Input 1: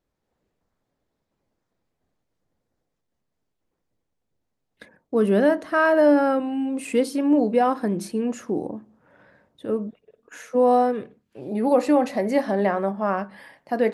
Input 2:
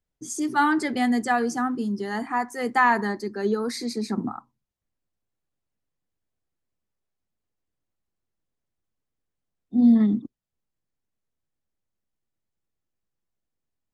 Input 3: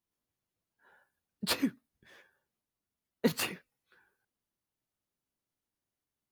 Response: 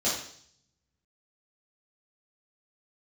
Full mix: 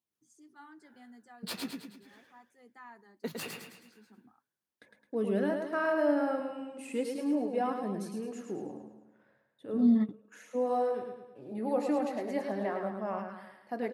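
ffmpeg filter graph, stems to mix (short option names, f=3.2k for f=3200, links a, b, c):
-filter_complex "[0:a]agate=range=-33dB:threshold=-51dB:ratio=3:detection=peak,volume=-8.5dB,asplit=3[a][b][c];[b]volume=-5.5dB[d];[1:a]volume=-4dB[e];[2:a]acompressor=threshold=-32dB:ratio=2.5,volume=-0.5dB,asplit=2[f][g];[g]volume=-4dB[h];[c]apad=whole_len=614492[i];[e][i]sidechaingate=range=-24dB:threshold=-58dB:ratio=16:detection=peak[j];[d][h]amix=inputs=2:normalize=0,aecho=0:1:107|214|321|428|535|642|749:1|0.48|0.23|0.111|0.0531|0.0255|0.0122[k];[a][j][f][k]amix=inputs=4:normalize=0,highpass=98,flanger=delay=0.3:depth=9.3:regen=-57:speed=0.38:shape=sinusoidal"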